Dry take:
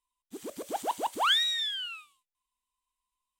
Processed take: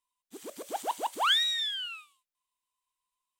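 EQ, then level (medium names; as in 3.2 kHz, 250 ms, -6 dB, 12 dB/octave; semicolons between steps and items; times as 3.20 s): bass shelf 140 Hz -6 dB; bass shelf 290 Hz -7.5 dB; 0.0 dB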